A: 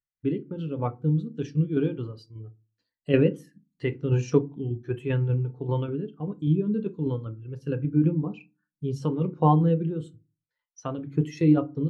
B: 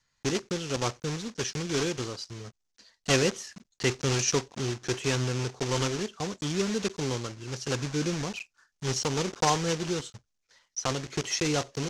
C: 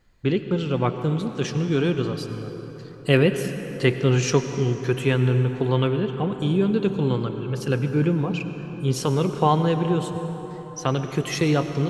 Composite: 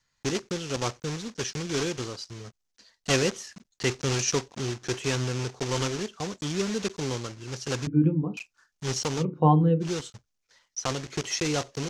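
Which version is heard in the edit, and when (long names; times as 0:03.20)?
B
0:07.87–0:08.37: punch in from A
0:09.20–0:09.85: punch in from A, crossfade 0.10 s
not used: C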